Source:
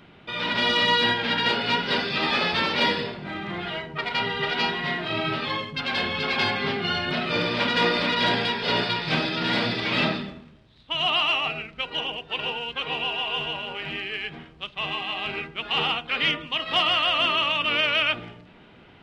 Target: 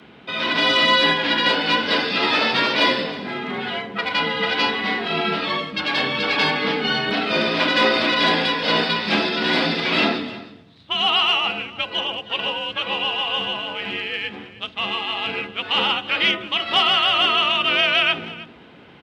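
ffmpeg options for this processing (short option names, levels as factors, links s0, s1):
-af "aecho=1:1:315:0.126,afreqshift=50,volume=1.68"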